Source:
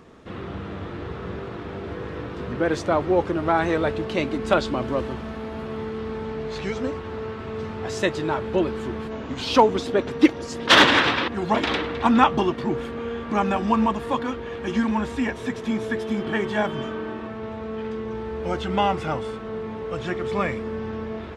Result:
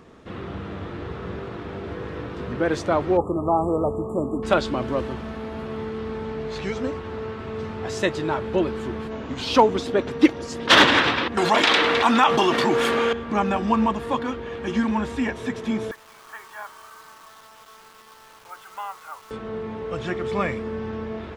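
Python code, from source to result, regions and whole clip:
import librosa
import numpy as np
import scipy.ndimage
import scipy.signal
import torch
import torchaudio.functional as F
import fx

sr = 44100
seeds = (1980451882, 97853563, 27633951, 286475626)

y = fx.chain(x, sr, fx.brickwall_bandstop(low_hz=1300.0, high_hz=7000.0),
    fx.dynamic_eq(hz=740.0, q=6.2, threshold_db=-35.0, ratio=4.0, max_db=3), at=(3.17, 4.43))
y = fx.chain(y, sr, fx.highpass(hz=760.0, slope=6),
    fx.high_shelf(hz=5600.0, db=6.5),
    fx.env_flatten(amount_pct=70), at=(11.37, 13.13))
y = fx.chain(y, sr, fx.ladder_bandpass(hz=1300.0, resonance_pct=50),
    fx.quant_dither(seeds[0], bits=8, dither='none'), at=(15.91, 19.31))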